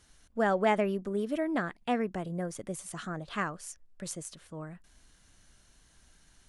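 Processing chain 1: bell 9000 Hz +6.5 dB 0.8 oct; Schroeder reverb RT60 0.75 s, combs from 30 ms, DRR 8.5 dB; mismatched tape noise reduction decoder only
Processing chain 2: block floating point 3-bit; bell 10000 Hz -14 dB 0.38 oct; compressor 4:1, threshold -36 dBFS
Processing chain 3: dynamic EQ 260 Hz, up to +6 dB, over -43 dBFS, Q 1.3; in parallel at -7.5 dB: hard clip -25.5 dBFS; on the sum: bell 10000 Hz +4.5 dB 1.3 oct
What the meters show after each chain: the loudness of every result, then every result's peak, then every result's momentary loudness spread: -32.0, -41.0, -28.0 LUFS; -12.5, -24.5, -10.5 dBFS; 16, 8, 15 LU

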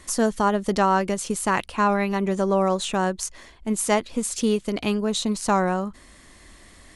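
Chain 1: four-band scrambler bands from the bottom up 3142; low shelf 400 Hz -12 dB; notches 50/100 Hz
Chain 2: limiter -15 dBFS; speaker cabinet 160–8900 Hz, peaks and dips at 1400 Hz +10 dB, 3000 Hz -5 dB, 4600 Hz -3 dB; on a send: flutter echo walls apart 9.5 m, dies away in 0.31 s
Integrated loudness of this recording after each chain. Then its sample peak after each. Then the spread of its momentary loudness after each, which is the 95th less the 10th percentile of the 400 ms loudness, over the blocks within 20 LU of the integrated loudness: -21.5, -25.0 LUFS; -7.0, -8.0 dBFS; 8, 6 LU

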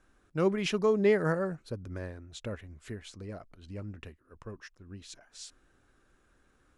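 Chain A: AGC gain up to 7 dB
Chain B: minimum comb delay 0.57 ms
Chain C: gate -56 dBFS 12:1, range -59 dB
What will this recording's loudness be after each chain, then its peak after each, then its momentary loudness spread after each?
-25.5, -32.5, -31.0 LUFS; -7.0, -16.0, -14.0 dBFS; 22, 23, 23 LU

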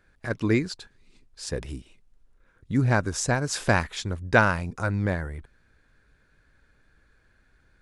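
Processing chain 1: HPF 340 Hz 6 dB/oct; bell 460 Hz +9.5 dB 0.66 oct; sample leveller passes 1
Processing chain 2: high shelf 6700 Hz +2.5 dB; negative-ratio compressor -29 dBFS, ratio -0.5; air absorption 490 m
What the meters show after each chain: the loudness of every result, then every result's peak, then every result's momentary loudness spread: -22.5, -34.0 LUFS; -1.0, -15.5 dBFS; 13, 7 LU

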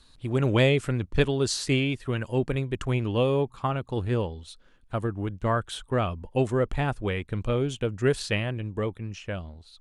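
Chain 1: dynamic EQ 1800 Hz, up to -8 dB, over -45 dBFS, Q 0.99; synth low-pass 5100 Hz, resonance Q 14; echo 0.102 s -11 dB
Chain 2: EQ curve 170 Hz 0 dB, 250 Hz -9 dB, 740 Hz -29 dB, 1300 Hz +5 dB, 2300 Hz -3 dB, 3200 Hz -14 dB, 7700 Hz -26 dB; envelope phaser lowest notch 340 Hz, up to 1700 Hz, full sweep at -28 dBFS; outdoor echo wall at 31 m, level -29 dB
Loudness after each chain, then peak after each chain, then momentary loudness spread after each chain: -26.0, -32.0 LUFS; -5.0, -13.5 dBFS; 11, 8 LU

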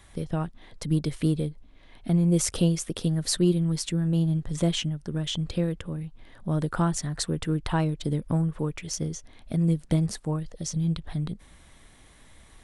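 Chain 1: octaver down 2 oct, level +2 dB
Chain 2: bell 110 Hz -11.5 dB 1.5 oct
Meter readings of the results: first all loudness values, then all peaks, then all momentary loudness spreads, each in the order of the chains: -25.5, -31.5 LUFS; -8.0, -10.0 dBFS; 10, 13 LU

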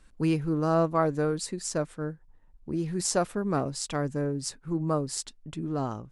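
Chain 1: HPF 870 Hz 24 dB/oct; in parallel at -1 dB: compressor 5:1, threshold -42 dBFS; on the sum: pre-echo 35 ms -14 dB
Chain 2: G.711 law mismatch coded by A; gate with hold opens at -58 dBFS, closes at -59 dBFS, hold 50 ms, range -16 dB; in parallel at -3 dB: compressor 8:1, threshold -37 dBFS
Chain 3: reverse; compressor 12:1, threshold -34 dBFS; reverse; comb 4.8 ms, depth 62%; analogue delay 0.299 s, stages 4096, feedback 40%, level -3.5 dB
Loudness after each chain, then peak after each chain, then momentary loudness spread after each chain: -33.5, -29.0, -37.0 LUFS; -9.0, -9.5, -20.0 dBFS; 14, 9, 5 LU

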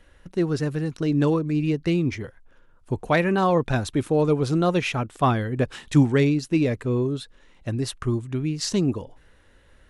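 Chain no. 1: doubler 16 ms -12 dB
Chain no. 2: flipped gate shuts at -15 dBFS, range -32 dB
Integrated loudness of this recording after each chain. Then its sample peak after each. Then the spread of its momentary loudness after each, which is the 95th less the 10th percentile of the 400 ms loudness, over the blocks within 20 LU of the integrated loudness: -23.5, -31.0 LUFS; -7.0, -14.5 dBFS; 10, 21 LU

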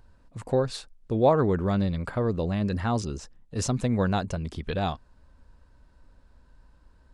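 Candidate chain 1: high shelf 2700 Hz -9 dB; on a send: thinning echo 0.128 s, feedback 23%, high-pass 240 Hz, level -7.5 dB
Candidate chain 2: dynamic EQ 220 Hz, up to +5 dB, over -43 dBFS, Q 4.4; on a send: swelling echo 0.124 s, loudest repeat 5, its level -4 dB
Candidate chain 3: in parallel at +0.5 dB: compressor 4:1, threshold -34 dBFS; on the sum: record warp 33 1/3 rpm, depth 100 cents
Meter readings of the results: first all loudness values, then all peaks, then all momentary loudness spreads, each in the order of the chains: -27.0, -21.0, -25.0 LUFS; -9.5, -6.0, -8.0 dBFS; 15, 10, 12 LU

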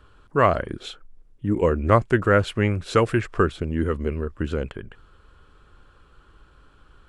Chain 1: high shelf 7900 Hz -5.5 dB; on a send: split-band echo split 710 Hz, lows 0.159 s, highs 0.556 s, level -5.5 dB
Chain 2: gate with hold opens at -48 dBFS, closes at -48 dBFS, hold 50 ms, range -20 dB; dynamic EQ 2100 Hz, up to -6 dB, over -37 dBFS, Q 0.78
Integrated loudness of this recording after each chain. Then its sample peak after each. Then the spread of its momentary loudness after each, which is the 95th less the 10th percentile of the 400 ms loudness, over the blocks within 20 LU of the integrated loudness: -22.0, -24.0 LUFS; -4.0, -4.5 dBFS; 13, 13 LU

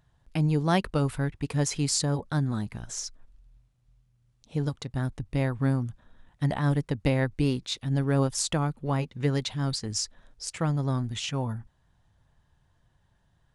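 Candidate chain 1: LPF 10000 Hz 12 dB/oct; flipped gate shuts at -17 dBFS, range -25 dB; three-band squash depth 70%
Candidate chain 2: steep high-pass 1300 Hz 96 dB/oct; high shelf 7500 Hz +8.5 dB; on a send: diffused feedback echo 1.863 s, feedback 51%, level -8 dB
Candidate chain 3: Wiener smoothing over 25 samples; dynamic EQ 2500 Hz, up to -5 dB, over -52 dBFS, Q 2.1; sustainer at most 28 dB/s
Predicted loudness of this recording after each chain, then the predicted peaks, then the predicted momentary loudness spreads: -34.5, -33.5, -27.5 LUFS; -14.0, -8.5, -8.0 dBFS; 19, 15, 12 LU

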